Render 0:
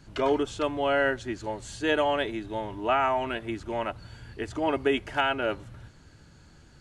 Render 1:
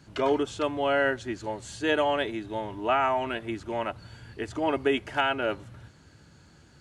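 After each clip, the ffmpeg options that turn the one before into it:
-af "highpass=71"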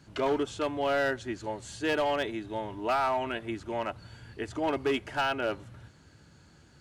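-af "asoftclip=type=hard:threshold=-20dB,volume=-2dB"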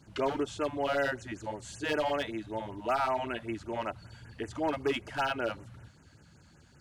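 -af "afftfilt=real='re*(1-between(b*sr/1024,310*pow(4400/310,0.5+0.5*sin(2*PI*5.2*pts/sr))/1.41,310*pow(4400/310,0.5+0.5*sin(2*PI*5.2*pts/sr))*1.41))':imag='im*(1-between(b*sr/1024,310*pow(4400/310,0.5+0.5*sin(2*PI*5.2*pts/sr))/1.41,310*pow(4400/310,0.5+0.5*sin(2*PI*5.2*pts/sr))*1.41))':win_size=1024:overlap=0.75,volume=-1dB"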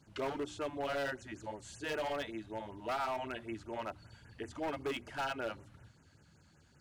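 -af "bandreject=f=60:t=h:w=6,bandreject=f=120:t=h:w=6,bandreject=f=180:t=h:w=6,bandreject=f=240:t=h:w=6,bandreject=f=300:t=h:w=6,bandreject=f=360:t=h:w=6,aeval=exprs='0.0562*(abs(mod(val(0)/0.0562+3,4)-2)-1)':c=same,volume=-5.5dB"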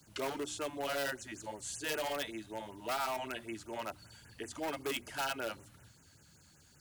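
-filter_complex "[0:a]aemphasis=mode=production:type=75fm,acrossover=split=140|1000[a][b][c];[a]alimiter=level_in=33.5dB:limit=-24dB:level=0:latency=1,volume=-33.5dB[d];[d][b][c]amix=inputs=3:normalize=0"

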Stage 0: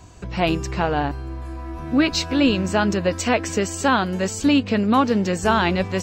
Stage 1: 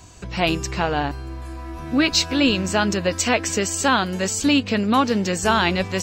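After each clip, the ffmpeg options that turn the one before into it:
-af "highshelf=f=2.2k:g=8,volume=-1.5dB"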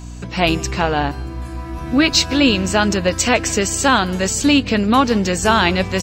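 -filter_complex "[0:a]aeval=exprs='val(0)+0.0178*(sin(2*PI*60*n/s)+sin(2*PI*2*60*n/s)/2+sin(2*PI*3*60*n/s)/3+sin(2*PI*4*60*n/s)/4+sin(2*PI*5*60*n/s)/5)':c=same,asplit=2[a][b];[b]adelay=157.4,volume=-24dB,highshelf=f=4k:g=-3.54[c];[a][c]amix=inputs=2:normalize=0,volume=4dB"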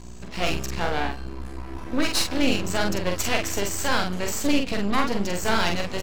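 -filter_complex "[0:a]aeval=exprs='max(val(0),0)':c=same,asplit=2[a][b];[b]adelay=45,volume=-4dB[c];[a][c]amix=inputs=2:normalize=0,volume=-5.5dB"

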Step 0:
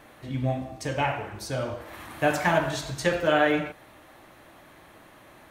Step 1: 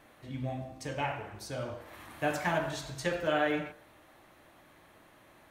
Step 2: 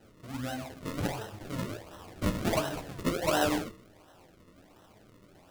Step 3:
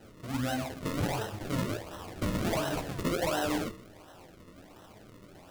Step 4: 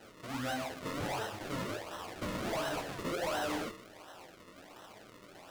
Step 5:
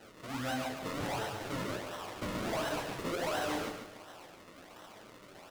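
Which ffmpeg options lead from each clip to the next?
-af "bandreject=f=65.27:t=h:w=4,bandreject=f=130.54:t=h:w=4,bandreject=f=195.81:t=h:w=4,bandreject=f=261.08:t=h:w=4,bandreject=f=326.35:t=h:w=4,bandreject=f=391.62:t=h:w=4,bandreject=f=456.89:t=h:w=4,bandreject=f=522.16:t=h:w=4,bandreject=f=587.43:t=h:w=4,bandreject=f=652.7:t=h:w=4,bandreject=f=717.97:t=h:w=4,bandreject=f=783.24:t=h:w=4,bandreject=f=848.51:t=h:w=4,bandreject=f=913.78:t=h:w=4,bandreject=f=979.05:t=h:w=4,bandreject=f=1.04432k:t=h:w=4,bandreject=f=1.10959k:t=h:w=4,bandreject=f=1.17486k:t=h:w=4,bandreject=f=1.24013k:t=h:w=4,bandreject=f=1.3054k:t=h:w=4,bandreject=f=1.37067k:t=h:w=4,bandreject=f=1.43594k:t=h:w=4,bandreject=f=1.50121k:t=h:w=4,bandreject=f=1.56648k:t=h:w=4,bandreject=f=1.63175k:t=h:w=4,bandreject=f=1.69702k:t=h:w=4,bandreject=f=1.76229k:t=h:w=4,bandreject=f=1.82756k:t=h:w=4,volume=-7dB"
-af "acrusher=samples=38:mix=1:aa=0.000001:lfo=1:lforange=38:lforate=1.4,flanger=delay=8.9:depth=3.2:regen=-39:speed=0.8:shape=triangular,volume=5.5dB"
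-af "alimiter=level_in=3.5dB:limit=-24dB:level=0:latency=1:release=66,volume=-3.5dB,volume=5dB"
-filter_complex "[0:a]asplit=2[a][b];[b]highpass=f=720:p=1,volume=15dB,asoftclip=type=tanh:threshold=-22dB[c];[a][c]amix=inputs=2:normalize=0,lowpass=f=7.8k:p=1,volume=-6dB,volume=-6dB"
-af "aecho=1:1:141|282|423|564:0.422|0.143|0.0487|0.0166"

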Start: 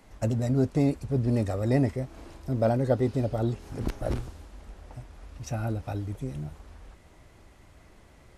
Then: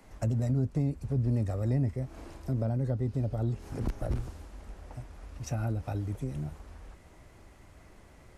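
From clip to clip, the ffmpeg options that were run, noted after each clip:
-filter_complex "[0:a]equalizer=f=3.6k:t=o:w=0.76:g=-3,acrossover=split=190[a][b];[b]acompressor=threshold=-35dB:ratio=8[c];[a][c]amix=inputs=2:normalize=0"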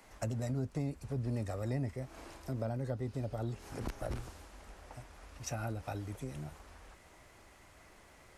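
-af "lowshelf=f=430:g=-11.5,volume=2dB"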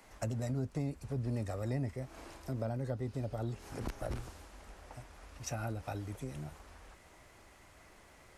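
-af anull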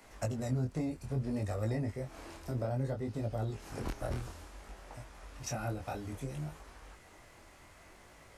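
-af "flanger=delay=18.5:depth=6.3:speed=0.6,volume=5dB"

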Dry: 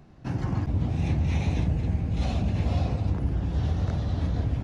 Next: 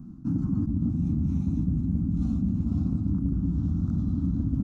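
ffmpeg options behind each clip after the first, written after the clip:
-af "firequalizer=gain_entry='entry(130,0);entry(180,10);entry(280,11);entry(430,-23);entry(1300,-6);entry(1800,-27);entry(6800,-8)':delay=0.05:min_phase=1,areverse,acompressor=threshold=-28dB:ratio=6,areverse,volume=5dB"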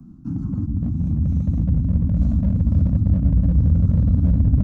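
-filter_complex "[0:a]asubboost=boost=6:cutoff=180,acrossover=split=150|310[a][b][c];[b]volume=24.5dB,asoftclip=hard,volume=-24.5dB[d];[a][d][c]amix=inputs=3:normalize=0"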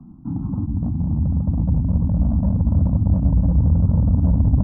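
-af "lowpass=f=900:t=q:w=3.8"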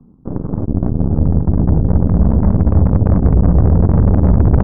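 -af "aeval=exprs='0.473*(cos(1*acos(clip(val(0)/0.473,-1,1)))-cos(1*PI/2))+0.0596*(cos(3*acos(clip(val(0)/0.473,-1,1)))-cos(3*PI/2))+0.133*(cos(5*acos(clip(val(0)/0.473,-1,1)))-cos(5*PI/2))+0.075*(cos(6*acos(clip(val(0)/0.473,-1,1)))-cos(6*PI/2))+0.119*(cos(7*acos(clip(val(0)/0.473,-1,1)))-cos(7*PI/2))':c=same,acontrast=78"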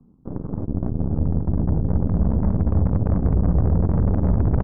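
-af "aecho=1:1:248:0.158,volume=-8dB"

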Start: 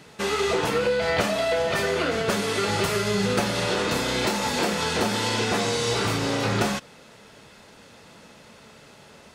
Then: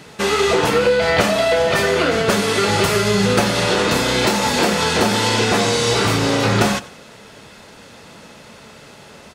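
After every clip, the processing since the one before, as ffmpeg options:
-af "aecho=1:1:90|180|270:0.112|0.046|0.0189,volume=7.5dB"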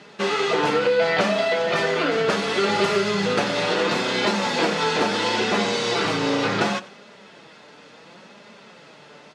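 -af "highpass=190,flanger=delay=4.9:depth=1.9:regen=51:speed=0.71:shape=sinusoidal,lowpass=5k"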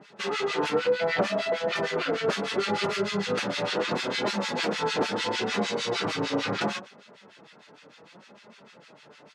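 -filter_complex "[0:a]acrossover=split=1300[a][b];[a]aeval=exprs='val(0)*(1-1/2+1/2*cos(2*PI*6.6*n/s))':c=same[c];[b]aeval=exprs='val(0)*(1-1/2-1/2*cos(2*PI*6.6*n/s))':c=same[d];[c][d]amix=inputs=2:normalize=0,volume=-1.5dB"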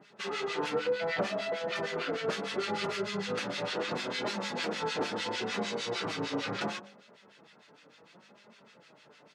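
-af "bandreject=f=50.6:t=h:w=4,bandreject=f=101.2:t=h:w=4,bandreject=f=151.8:t=h:w=4,bandreject=f=202.4:t=h:w=4,bandreject=f=253:t=h:w=4,bandreject=f=303.6:t=h:w=4,bandreject=f=354.2:t=h:w=4,bandreject=f=404.8:t=h:w=4,bandreject=f=455.4:t=h:w=4,bandreject=f=506:t=h:w=4,bandreject=f=556.6:t=h:w=4,bandreject=f=607.2:t=h:w=4,bandreject=f=657.8:t=h:w=4,bandreject=f=708.4:t=h:w=4,bandreject=f=759:t=h:w=4,bandreject=f=809.6:t=h:w=4,bandreject=f=860.2:t=h:w=4,bandreject=f=910.8:t=h:w=4,bandreject=f=961.4:t=h:w=4,bandreject=f=1.012k:t=h:w=4,bandreject=f=1.0626k:t=h:w=4,volume=-5.5dB"

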